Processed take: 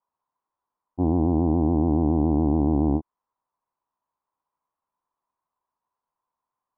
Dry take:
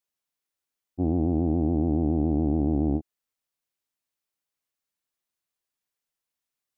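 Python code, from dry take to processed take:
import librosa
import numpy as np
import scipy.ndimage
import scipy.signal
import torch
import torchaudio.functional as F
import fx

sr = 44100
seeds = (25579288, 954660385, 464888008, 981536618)

y = fx.dynamic_eq(x, sr, hz=690.0, q=1.6, threshold_db=-47.0, ratio=4.0, max_db=-4)
y = fx.lowpass_res(y, sr, hz=1000.0, q=8.4)
y = y * librosa.db_to_amplitude(2.5)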